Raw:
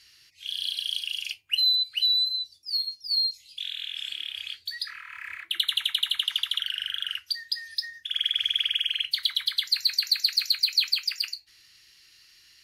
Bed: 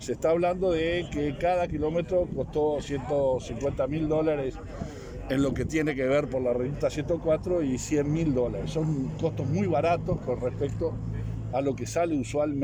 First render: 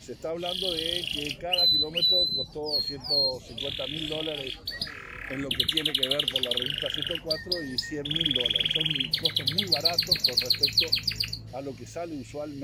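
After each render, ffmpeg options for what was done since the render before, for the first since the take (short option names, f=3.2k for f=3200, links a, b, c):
-filter_complex "[1:a]volume=-9dB[a];[0:a][a]amix=inputs=2:normalize=0"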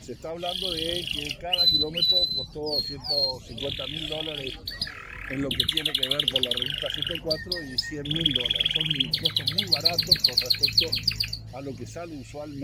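-af "aphaser=in_gain=1:out_gain=1:delay=1.6:decay=0.45:speed=1.1:type=triangular"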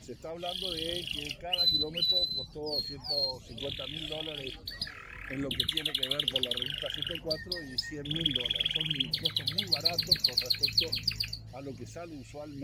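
-af "volume=-6dB"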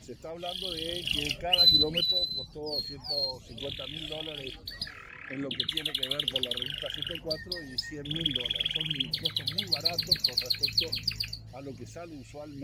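-filter_complex "[0:a]asettb=1/sr,asplit=3[a][b][c];[a]atrim=end=1.054[d];[b]atrim=start=1.05:end=2.01,asetpts=PTS-STARTPTS,afade=t=in:d=0.004:c=qsin,afade=t=out:st=0.956:d=0.004:c=qsin,acontrast=61[e];[c]atrim=start=2.006[f];[d][e]acrossfade=d=0.004:c1=hsin:c2=qsin[g];[g][f]acrossfade=d=0.004:c1=qsin:c2=hsin,asettb=1/sr,asplit=3[h][i][j];[h]atrim=end=5.094[k];[i]atrim=start=5.09:end=5.7,asetpts=PTS-STARTPTS,afade=t=in:d=0.004:c=qsin,afade=t=out:st=0.606:d=0.004:c=qsin,highpass=130,lowpass=5.4k[l];[j]atrim=start=5.696[m];[k][l]acrossfade=d=0.004:c1=hsin:c2=qsin[n];[n][m]acrossfade=d=0.004:c1=qsin:c2=hsin"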